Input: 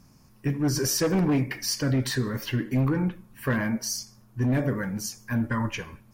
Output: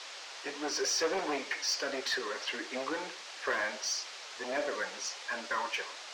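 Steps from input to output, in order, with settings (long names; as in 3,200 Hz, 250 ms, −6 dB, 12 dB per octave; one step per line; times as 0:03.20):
background noise white −40 dBFS
high-pass filter 460 Hz 24 dB per octave
flanger 1.5 Hz, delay 2.4 ms, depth 5.4 ms, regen +61%
low-pass filter 5,800 Hz 24 dB per octave
in parallel at −4 dB: hard clipping −34.5 dBFS, distortion −10 dB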